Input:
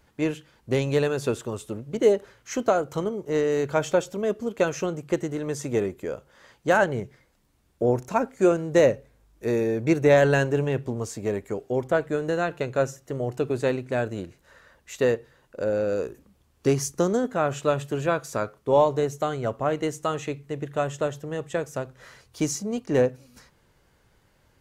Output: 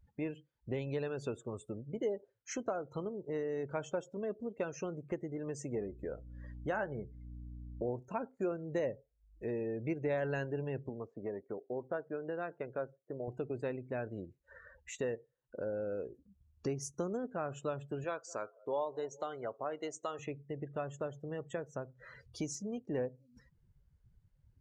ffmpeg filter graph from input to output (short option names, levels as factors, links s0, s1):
-filter_complex "[0:a]asettb=1/sr,asplit=3[s0][s1][s2];[s0]atrim=end=5.754[s3];[s1]atrim=start=5.75:end=7.89,asetpts=PTS-STARTPTS,afade=t=in:d=0.004:c=qsin,afade=t=out:st=2.136:d=0.004:c=qsin,aeval=exprs='val(0)+0.00708*(sin(2*PI*60*n/s)+sin(2*PI*2*60*n/s)/2+sin(2*PI*3*60*n/s)/3+sin(2*PI*4*60*n/s)/4+sin(2*PI*5*60*n/s)/5)':c=same,asplit=2[s4][s5];[s5]adelay=14,volume=0.282[s6];[s4][s6]amix=inputs=2:normalize=0,atrim=end_sample=94374,adynamicequalizer=threshold=0.0158:dfrequency=2400:dqfactor=0.7:tfrequency=2400:tqfactor=0.7:attack=5:release=100:ratio=0.375:range=2.5:mode=cutabove:tftype=highshelf[s7];[s2]atrim=start=7.886[s8];[s3][s7]acrossfade=d=0.004:c1=hsin:c2=qsin[s9];[s9][s8]acrossfade=d=0.004:c1=qsin:c2=hsin,asettb=1/sr,asplit=3[s10][s11][s12];[s10]atrim=end=10.894[s13];[s11]atrim=start=10.89:end=13.28,asetpts=PTS-STARTPTS,afade=t=in:d=0.004:c=qsin,afade=t=out:st=2.386:d=0.004:c=qsin,highpass=f=290:p=1,highshelf=f=3500:g=-7.5,adynamicsmooth=sensitivity=6.5:basefreq=2100[s14];[s12]atrim=start=13.276[s15];[s13][s14]acrossfade=d=0.004:c1=hsin:c2=qsin[s16];[s16][s15]acrossfade=d=0.004:c1=qsin:c2=hsin,asettb=1/sr,asplit=3[s17][s18][s19];[s17]atrim=end=18.044[s20];[s18]atrim=start=18.04:end=20.19,asetpts=PTS-STARTPTS,afade=t=in:d=0.004:c=qsin,afade=t=out:st=2.146:d=0.004:c=qsin,bass=f=250:g=-14,treble=f=4000:g=13,adynamicsmooth=sensitivity=1:basefreq=4400,asplit=2[s21][s22];[s22]adelay=210,lowpass=f=1400:p=1,volume=0.0631,asplit=2[s23][s24];[s24]adelay=210,lowpass=f=1400:p=1,volume=0.53,asplit=2[s25][s26];[s26]adelay=210,lowpass=f=1400:p=1,volume=0.53[s27];[s21][s23][s25][s27]amix=inputs=4:normalize=0,atrim=end_sample=94815[s28];[s19]atrim=start=20.186[s29];[s20][s28]acrossfade=d=0.004:c1=hsin:c2=qsin[s30];[s30][s29]acrossfade=d=0.004:c1=qsin:c2=hsin,acompressor=threshold=0.00355:ratio=2,afftdn=nr=28:nf=-51,volume=1.19"